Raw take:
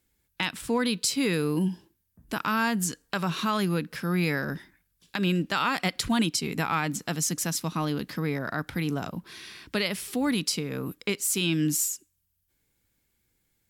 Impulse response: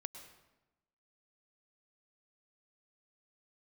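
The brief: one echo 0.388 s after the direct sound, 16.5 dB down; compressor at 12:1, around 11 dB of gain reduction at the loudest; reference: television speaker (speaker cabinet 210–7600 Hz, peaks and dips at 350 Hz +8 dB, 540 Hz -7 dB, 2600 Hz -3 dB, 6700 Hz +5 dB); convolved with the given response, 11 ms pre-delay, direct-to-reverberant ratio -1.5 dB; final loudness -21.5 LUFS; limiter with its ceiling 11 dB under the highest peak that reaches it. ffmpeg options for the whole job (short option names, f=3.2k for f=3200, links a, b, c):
-filter_complex "[0:a]acompressor=threshold=-32dB:ratio=12,alimiter=level_in=5.5dB:limit=-24dB:level=0:latency=1,volume=-5.5dB,aecho=1:1:388:0.15,asplit=2[a][b];[1:a]atrim=start_sample=2205,adelay=11[c];[b][c]afir=irnorm=-1:irlink=0,volume=4.5dB[d];[a][d]amix=inputs=2:normalize=0,highpass=f=210:w=0.5412,highpass=f=210:w=1.3066,equalizer=f=350:t=q:w=4:g=8,equalizer=f=540:t=q:w=4:g=-7,equalizer=f=2.6k:t=q:w=4:g=-3,equalizer=f=6.7k:t=q:w=4:g=5,lowpass=f=7.6k:w=0.5412,lowpass=f=7.6k:w=1.3066,volume=14.5dB"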